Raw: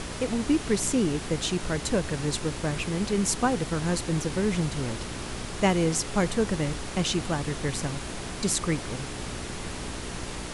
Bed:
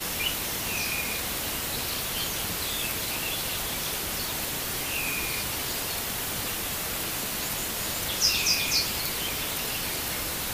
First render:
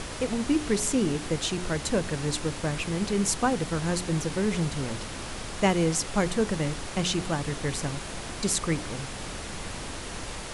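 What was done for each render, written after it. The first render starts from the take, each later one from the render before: de-hum 60 Hz, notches 7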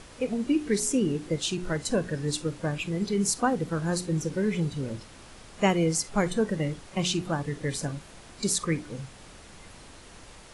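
noise print and reduce 12 dB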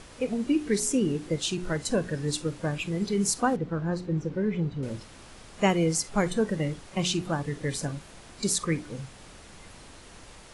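3.56–4.83 s: tape spacing loss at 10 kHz 26 dB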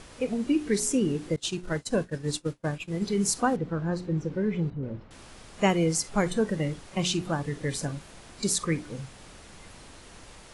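1.36–3.06 s: expander -28 dBFS; 4.70–5.11 s: tape spacing loss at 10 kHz 44 dB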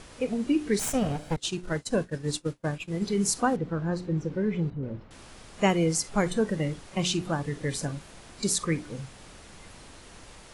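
0.79–1.37 s: comb filter that takes the minimum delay 1.3 ms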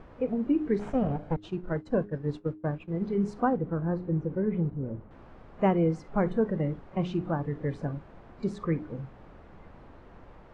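low-pass 1.2 kHz 12 dB/octave; de-hum 103.3 Hz, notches 4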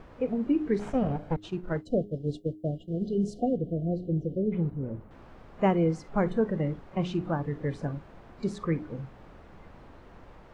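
1.85–4.52 s: spectral selection erased 750–2800 Hz; treble shelf 3.6 kHz +8 dB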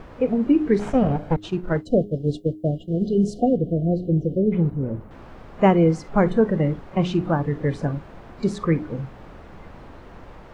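trim +8 dB

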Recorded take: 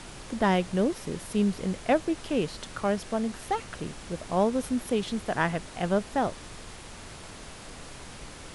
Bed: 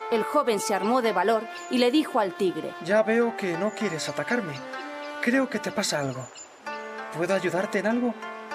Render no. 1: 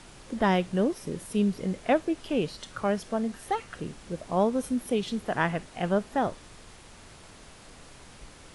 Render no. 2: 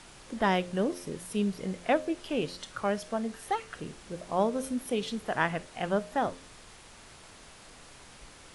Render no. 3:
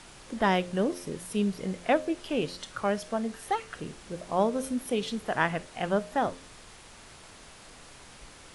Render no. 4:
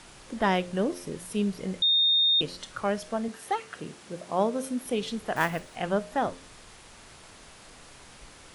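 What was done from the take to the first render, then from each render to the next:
noise print and reduce 6 dB
bass shelf 470 Hz -5 dB; de-hum 88.35 Hz, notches 7
trim +1.5 dB
1.82–2.41 s: bleep 3.67 kHz -19 dBFS; 3.28–4.83 s: high-pass 130 Hz; 5.36–5.77 s: block-companded coder 5-bit

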